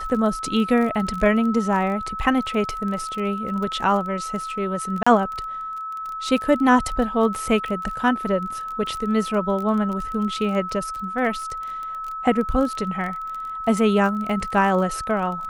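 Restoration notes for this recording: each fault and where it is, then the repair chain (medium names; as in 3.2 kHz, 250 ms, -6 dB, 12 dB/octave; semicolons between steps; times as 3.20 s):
crackle 22 per s -28 dBFS
whine 1.3 kHz -28 dBFS
5.03–5.07 s: dropout 35 ms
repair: de-click; band-stop 1.3 kHz, Q 30; interpolate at 5.03 s, 35 ms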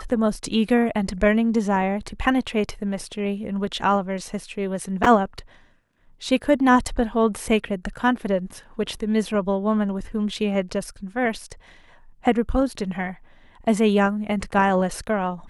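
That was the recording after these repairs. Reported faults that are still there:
nothing left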